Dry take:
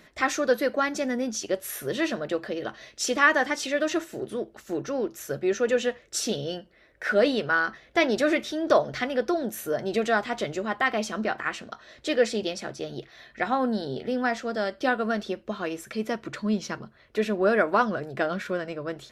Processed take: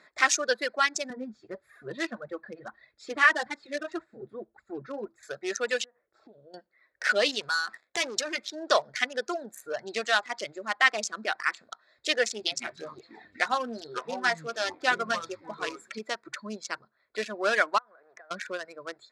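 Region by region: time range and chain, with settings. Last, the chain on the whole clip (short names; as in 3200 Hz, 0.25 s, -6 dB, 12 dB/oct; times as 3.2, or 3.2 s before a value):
1.1–5.23 flange 1.7 Hz, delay 1 ms, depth 6.5 ms, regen -22% + tone controls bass +15 dB, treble -14 dB
5.84–6.54 LPF 1200 Hz + compressor 10:1, threshold -37 dBFS
7.41–8.38 sample leveller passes 3 + compressor 4:1, threshold -29 dBFS
9.46–10.66 hard clip -16 dBFS + mismatched tape noise reduction decoder only
12.39–15.99 echoes that change speed 0.127 s, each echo -6 st, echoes 2, each echo -6 dB + doubler 13 ms -8.5 dB + echo 0.576 s -20.5 dB
17.78–18.31 G.711 law mismatch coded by mu + BPF 520–2000 Hz + compressor 8:1, threshold -37 dBFS
whole clip: Wiener smoothing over 15 samples; reverb removal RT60 1.9 s; weighting filter ITU-R 468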